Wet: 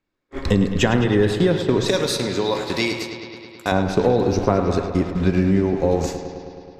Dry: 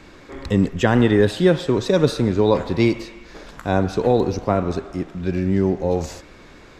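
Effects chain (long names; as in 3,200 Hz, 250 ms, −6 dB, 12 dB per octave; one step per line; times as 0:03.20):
downward compressor 10 to 1, threshold −22 dBFS, peak gain reduction 12.5 dB
noise gate −33 dBFS, range −43 dB
0:01.88–0:03.72: spectral tilt +3.5 dB per octave
bucket-brigade delay 106 ms, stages 4,096, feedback 76%, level −10.5 dB
on a send at −13 dB: convolution reverb RT60 0.50 s, pre-delay 4 ms
on the sum: level +8 dB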